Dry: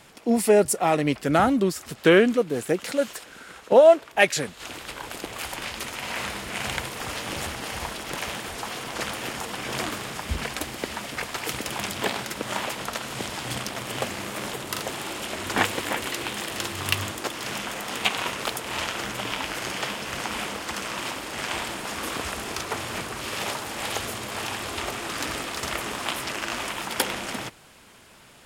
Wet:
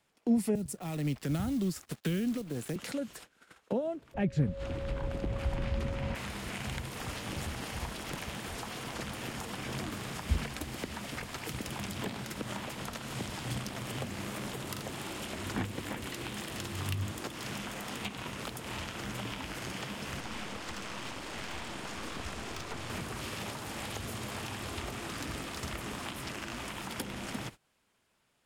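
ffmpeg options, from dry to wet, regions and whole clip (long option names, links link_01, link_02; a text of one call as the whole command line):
ffmpeg -i in.wav -filter_complex "[0:a]asettb=1/sr,asplit=3[link_01][link_02][link_03];[link_01]atrim=end=0.554[link_04];[link_02]atrim=start=0.55:end=2.76,asetpts=PTS-STARTPTS,afade=type=in:duration=0.004:curve=qsin,afade=type=out:start_time=2.206:duration=0.004:curve=qsin,acrusher=bits=5:mode=log:mix=0:aa=0.000001,acrossover=split=210|3000[link_05][link_06][link_07];[link_06]acompressor=threshold=-29dB:ratio=6:attack=3.2:release=140:knee=2.83:detection=peak[link_08];[link_05][link_08][link_07]amix=inputs=3:normalize=0,aeval=exprs='sgn(val(0))*max(abs(val(0))-0.00447,0)':channel_layout=same[link_09];[link_03]atrim=start=2.756[link_10];[link_04][link_09]acrossfade=duration=0.004:curve1=hsin:curve2=qsin[link_11];[link_11][link_10]acrossfade=duration=0.004:curve1=qsin:curve2=hsin,asettb=1/sr,asplit=3[link_12][link_13][link_14];[link_12]atrim=end=4.144[link_15];[link_13]atrim=start=4.14:end=6.15,asetpts=PTS-STARTPTS,afade=type=in:duration=0.004:curve=qsin,afade=type=out:start_time=2.006:duration=0.004:curve=qsin,aemphasis=mode=reproduction:type=riaa,aeval=exprs='val(0)+0.0251*sin(2*PI*550*n/s)':channel_layout=same[link_16];[link_14]atrim=start=6.146[link_17];[link_15][link_16]acrossfade=duration=0.004:curve1=hsin:curve2=qsin[link_18];[link_18][link_17]acrossfade=duration=0.004:curve1=qsin:curve2=hsin,asettb=1/sr,asplit=3[link_19][link_20][link_21];[link_19]atrim=end=20.204[link_22];[link_20]atrim=start=20.2:end=22.9,asetpts=PTS-STARTPTS,afade=type=in:duration=0.004:curve=qsin,afade=type=out:start_time=2.696:duration=0.004:curve=qsin,acrossover=split=8800[link_23][link_24];[link_24]acompressor=threshold=-57dB:ratio=4:attack=1:release=60[link_25];[link_23][link_25]amix=inputs=2:normalize=0,aeval=exprs='(tanh(22.4*val(0)+0.65)-tanh(0.65))/22.4':channel_layout=same[link_26];[link_21]atrim=start=22.896[link_27];[link_22][link_26]acrossfade=duration=0.004:curve1=hsin:curve2=qsin[link_28];[link_28][link_27]acrossfade=duration=0.004:curve1=qsin:curve2=hsin,agate=range=-23dB:threshold=-40dB:ratio=16:detection=peak,acrossover=split=250[link_29][link_30];[link_30]acompressor=threshold=-39dB:ratio=6[link_31];[link_29][link_31]amix=inputs=2:normalize=0" out.wav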